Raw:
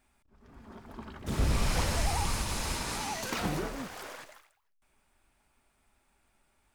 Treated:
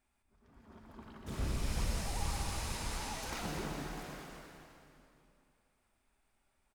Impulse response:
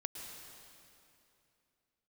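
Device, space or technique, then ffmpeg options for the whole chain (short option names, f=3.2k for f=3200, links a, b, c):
cave: -filter_complex "[0:a]asettb=1/sr,asplit=3[a][b][c];[a]atrim=end=1.514[d];[b]atrim=start=1.51:end=2.22,asetpts=PTS-STARTPTS,afade=t=in:d=0.004:c=qsin,afade=t=out:st=0.706:d=0.004:c=qsin,equalizer=f=1.2k:w=0.41:g=-4.5[e];[c]atrim=start=2.216[f];[d][e]acrossfade=d=0.004:c1=hsin:c2=qsin[g];[g][f]acrossfade=d=0.004:c1=qsin:c2=hsin,aecho=1:1:257:0.335[h];[1:a]atrim=start_sample=2205[i];[h][i]afir=irnorm=-1:irlink=0,volume=-6dB"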